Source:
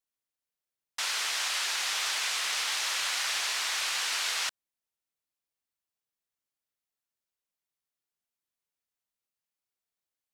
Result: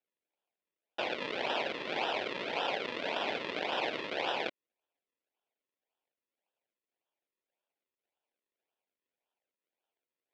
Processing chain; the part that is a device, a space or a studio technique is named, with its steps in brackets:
circuit-bent sampling toy (sample-and-hold swept by an LFO 40×, swing 100% 1.8 Hz; loudspeaker in its box 570–4,100 Hz, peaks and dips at 1,200 Hz −9 dB, 2,400 Hz +5 dB, 3,400 Hz +4 dB)
level +2 dB

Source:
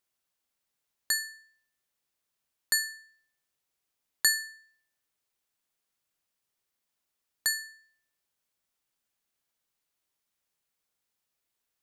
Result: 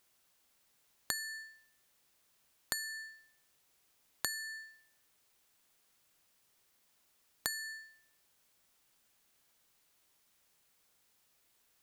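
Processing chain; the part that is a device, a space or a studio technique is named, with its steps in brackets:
serial compression, peaks first (downward compressor, threshold −36 dBFS, peak gain reduction 16.5 dB; downward compressor 2.5 to 1, threshold −47 dBFS, peak gain reduction 11 dB)
level +10.5 dB

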